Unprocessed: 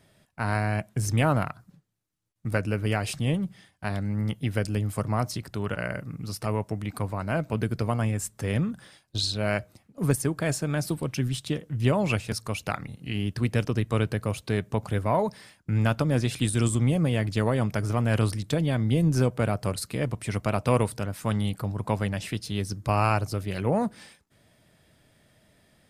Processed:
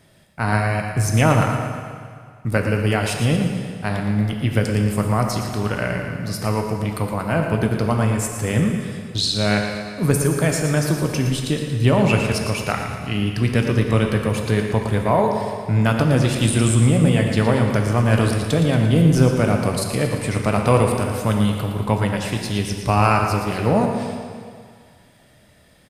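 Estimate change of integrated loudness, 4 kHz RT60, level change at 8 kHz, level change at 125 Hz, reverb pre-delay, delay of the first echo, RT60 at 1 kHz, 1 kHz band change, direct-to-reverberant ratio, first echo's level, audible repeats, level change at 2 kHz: +7.5 dB, 1.8 s, +8.0 dB, +7.5 dB, 12 ms, 115 ms, 2.1 s, +8.0 dB, 1.5 dB, −9.0 dB, 3, +8.0 dB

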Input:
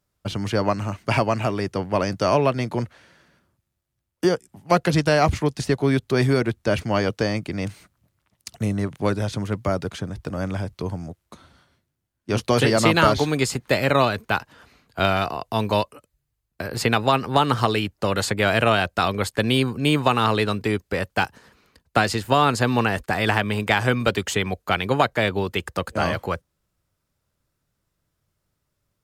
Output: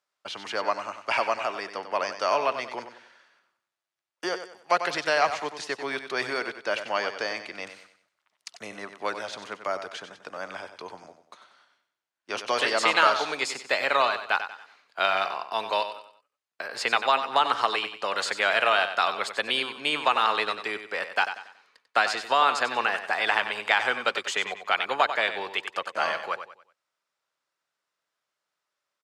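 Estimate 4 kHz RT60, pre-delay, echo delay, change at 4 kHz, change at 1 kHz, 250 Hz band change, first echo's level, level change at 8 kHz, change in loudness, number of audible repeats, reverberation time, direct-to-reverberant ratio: no reverb audible, no reverb audible, 94 ms, −1.5 dB, −1.5 dB, −18.5 dB, −10.0 dB, −6.0 dB, −4.0 dB, 3, no reverb audible, no reverb audible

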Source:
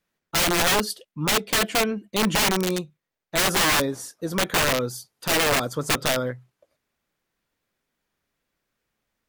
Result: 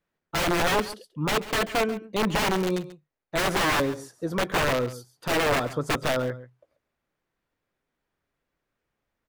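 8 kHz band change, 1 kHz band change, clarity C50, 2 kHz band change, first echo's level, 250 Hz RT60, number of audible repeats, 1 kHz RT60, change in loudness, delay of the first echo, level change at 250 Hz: −10.0 dB, −1.0 dB, no reverb audible, −3.0 dB, −16.0 dB, no reverb audible, 1, no reverb audible, −3.5 dB, 137 ms, −1.5 dB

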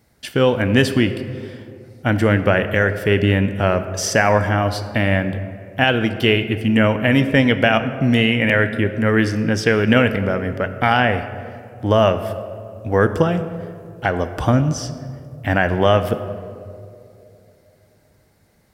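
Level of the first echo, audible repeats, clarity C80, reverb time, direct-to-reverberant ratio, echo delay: no echo audible, no echo audible, 12.0 dB, 2.8 s, 9.5 dB, no echo audible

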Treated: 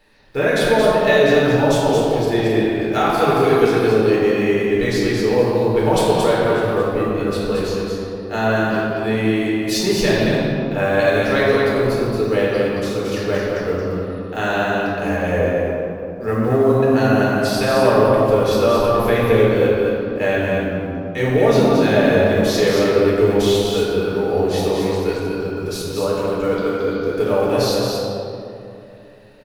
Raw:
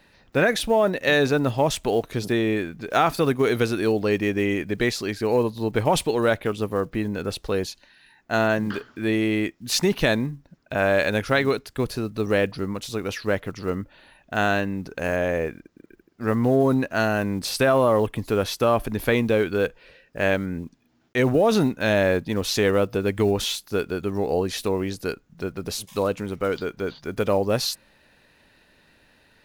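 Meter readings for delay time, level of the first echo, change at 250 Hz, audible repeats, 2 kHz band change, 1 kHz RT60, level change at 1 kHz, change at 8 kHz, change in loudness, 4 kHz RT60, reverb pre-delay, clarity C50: 224 ms, −4.0 dB, +5.5 dB, 1, +4.0 dB, 2.6 s, +6.0 dB, +2.0 dB, +6.0 dB, 1.4 s, 3 ms, −3.5 dB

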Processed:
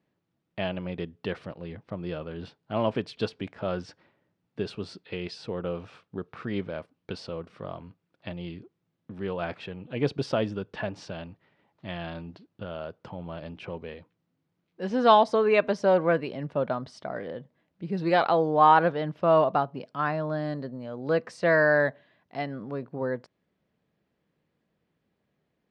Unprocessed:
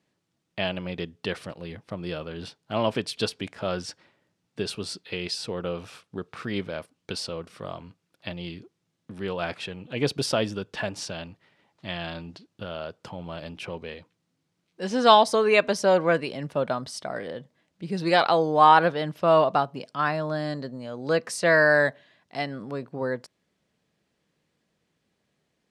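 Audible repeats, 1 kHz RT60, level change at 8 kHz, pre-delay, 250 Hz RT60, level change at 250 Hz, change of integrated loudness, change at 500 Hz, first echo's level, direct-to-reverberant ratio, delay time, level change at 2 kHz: no echo audible, no reverb audible, below −15 dB, no reverb audible, no reverb audible, −0.5 dB, −2.0 dB, −1.5 dB, no echo audible, no reverb audible, no echo audible, −4.0 dB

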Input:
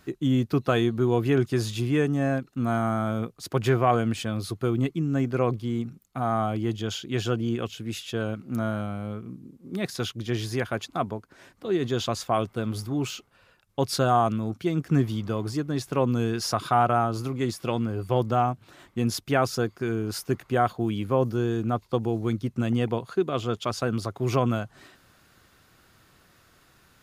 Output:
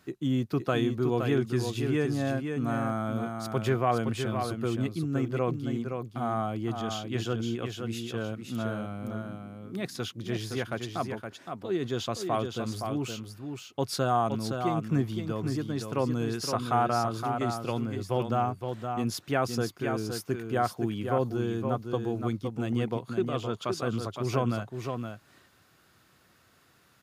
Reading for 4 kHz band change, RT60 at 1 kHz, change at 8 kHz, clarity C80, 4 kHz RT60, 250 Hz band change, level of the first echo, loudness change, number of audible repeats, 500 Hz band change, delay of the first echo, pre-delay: −3.5 dB, no reverb audible, −3.5 dB, no reverb audible, no reverb audible, −3.5 dB, −6.0 dB, −4.0 dB, 1, −3.5 dB, 517 ms, no reverb audible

